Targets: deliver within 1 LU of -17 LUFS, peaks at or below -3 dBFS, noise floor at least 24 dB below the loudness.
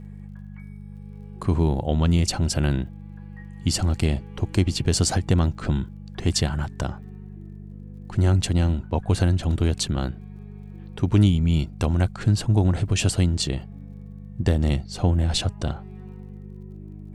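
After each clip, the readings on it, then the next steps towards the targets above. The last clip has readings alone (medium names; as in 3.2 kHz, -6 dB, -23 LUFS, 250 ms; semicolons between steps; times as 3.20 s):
tick rate 34 per s; hum 50 Hz; highest harmonic 200 Hz; hum level -37 dBFS; loudness -23.5 LUFS; peak level -8.0 dBFS; loudness target -17.0 LUFS
-> de-click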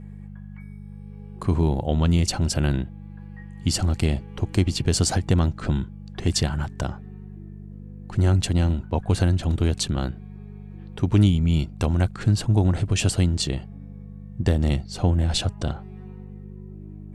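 tick rate 0 per s; hum 50 Hz; highest harmonic 200 Hz; hum level -37 dBFS
-> de-hum 50 Hz, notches 4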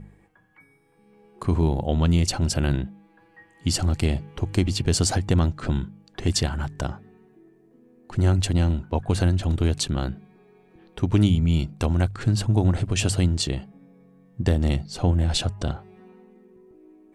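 hum not found; loudness -24.0 LUFS; peak level -7.5 dBFS; loudness target -17.0 LUFS
-> trim +7 dB; peak limiter -3 dBFS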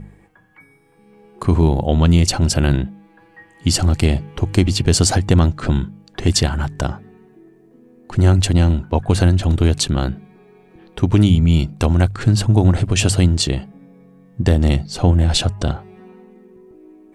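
loudness -17.0 LUFS; peak level -3.0 dBFS; noise floor -51 dBFS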